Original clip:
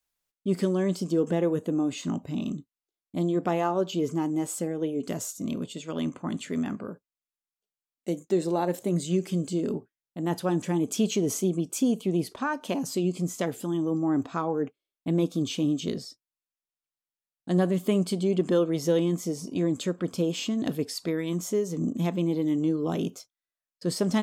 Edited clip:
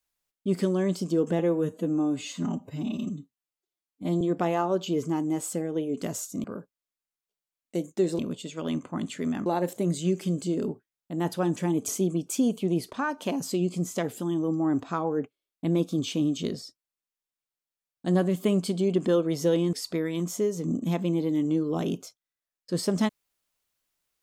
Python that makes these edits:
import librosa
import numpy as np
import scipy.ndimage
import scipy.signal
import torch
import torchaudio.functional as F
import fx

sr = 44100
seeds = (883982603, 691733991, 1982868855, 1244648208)

y = fx.edit(x, sr, fx.stretch_span(start_s=1.39, length_s=1.88, factor=1.5),
    fx.move(start_s=5.5, length_s=1.27, to_s=8.52),
    fx.cut(start_s=10.94, length_s=0.37),
    fx.cut(start_s=19.16, length_s=1.7), tone=tone)